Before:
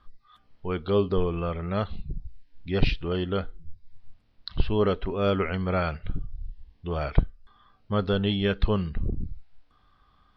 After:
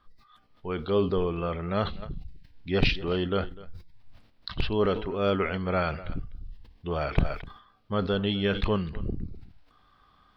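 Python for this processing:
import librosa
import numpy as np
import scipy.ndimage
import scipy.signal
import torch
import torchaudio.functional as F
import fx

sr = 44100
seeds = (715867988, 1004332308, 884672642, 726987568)

p1 = fx.rattle_buzz(x, sr, strikes_db=-15.0, level_db=-19.0)
p2 = fx.rider(p1, sr, range_db=3, speed_s=2.0)
p3 = fx.low_shelf(p2, sr, hz=110.0, db=-7.5)
p4 = p3 + fx.echo_single(p3, sr, ms=250, db=-20.0, dry=0)
y = fx.sustainer(p4, sr, db_per_s=100.0)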